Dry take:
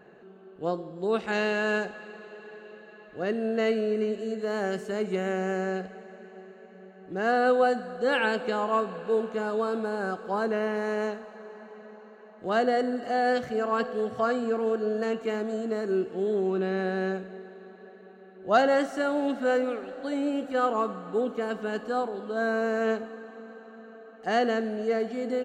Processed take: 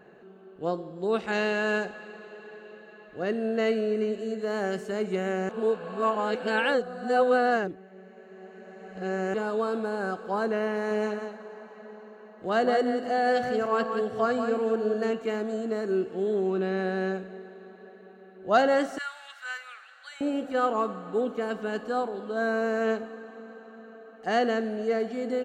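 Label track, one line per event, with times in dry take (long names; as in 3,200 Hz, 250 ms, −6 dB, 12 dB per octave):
5.490000	9.340000	reverse
10.730000	15.110000	single-tap delay 179 ms −7 dB
18.980000	20.210000	high-pass filter 1,300 Hz 24 dB per octave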